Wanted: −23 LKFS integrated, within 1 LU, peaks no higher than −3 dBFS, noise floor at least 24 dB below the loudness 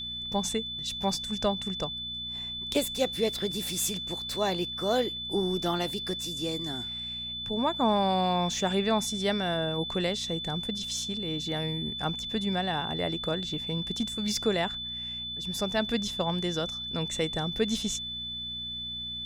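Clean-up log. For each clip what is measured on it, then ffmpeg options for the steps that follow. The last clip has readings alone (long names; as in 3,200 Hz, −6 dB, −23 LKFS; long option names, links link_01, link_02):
mains hum 60 Hz; hum harmonics up to 240 Hz; level of the hum −47 dBFS; interfering tone 3,500 Hz; level of the tone −34 dBFS; integrated loudness −29.5 LKFS; sample peak −13.5 dBFS; target loudness −23.0 LKFS
→ -af "bandreject=frequency=60:width_type=h:width=4,bandreject=frequency=120:width_type=h:width=4,bandreject=frequency=180:width_type=h:width=4,bandreject=frequency=240:width_type=h:width=4"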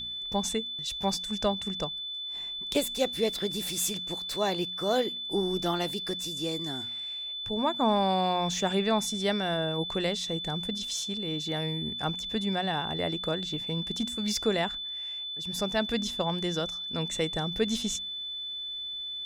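mains hum none found; interfering tone 3,500 Hz; level of the tone −34 dBFS
→ -af "bandreject=frequency=3500:width=30"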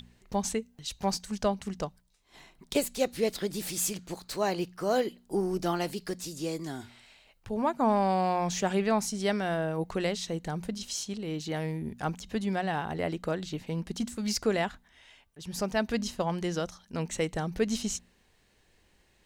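interfering tone none found; integrated loudness −31.5 LKFS; sample peak −14.5 dBFS; target loudness −23.0 LKFS
→ -af "volume=8.5dB"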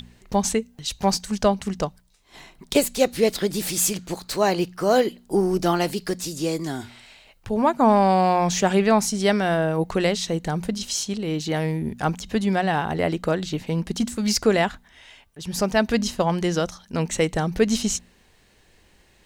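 integrated loudness −23.0 LKFS; sample peak −6.0 dBFS; background noise floor −58 dBFS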